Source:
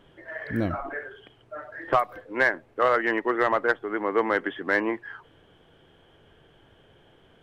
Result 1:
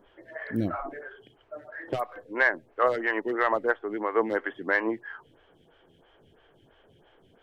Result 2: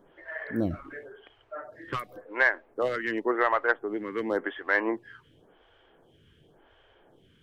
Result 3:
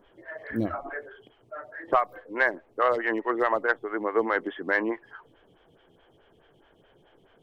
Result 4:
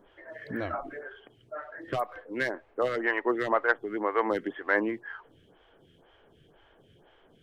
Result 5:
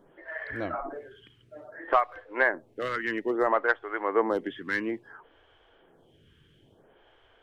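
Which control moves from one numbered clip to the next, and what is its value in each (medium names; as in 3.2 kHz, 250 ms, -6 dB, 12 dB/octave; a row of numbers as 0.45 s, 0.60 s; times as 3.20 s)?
lamp-driven phase shifter, rate: 3 Hz, 0.92 Hz, 4.7 Hz, 2 Hz, 0.59 Hz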